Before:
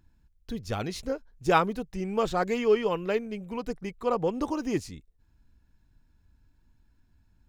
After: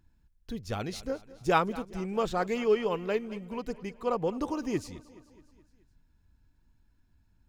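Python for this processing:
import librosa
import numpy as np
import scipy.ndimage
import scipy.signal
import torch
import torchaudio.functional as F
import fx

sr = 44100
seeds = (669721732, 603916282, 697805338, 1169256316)

y = fx.echo_feedback(x, sr, ms=212, feedback_pct=57, wet_db=-19.0)
y = y * librosa.db_to_amplitude(-2.5)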